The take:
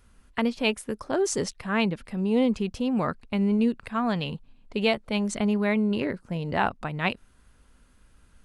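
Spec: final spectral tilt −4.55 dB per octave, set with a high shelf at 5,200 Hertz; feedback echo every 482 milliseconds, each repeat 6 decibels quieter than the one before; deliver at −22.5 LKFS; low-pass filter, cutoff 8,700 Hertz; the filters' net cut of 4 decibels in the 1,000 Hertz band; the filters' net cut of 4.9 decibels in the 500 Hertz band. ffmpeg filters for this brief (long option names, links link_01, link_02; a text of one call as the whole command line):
ffmpeg -i in.wav -af "lowpass=8700,equalizer=frequency=500:width_type=o:gain=-5.5,equalizer=frequency=1000:width_type=o:gain=-3.5,highshelf=frequency=5200:gain=6,aecho=1:1:482|964|1446|1928|2410|2892:0.501|0.251|0.125|0.0626|0.0313|0.0157,volume=5dB" out.wav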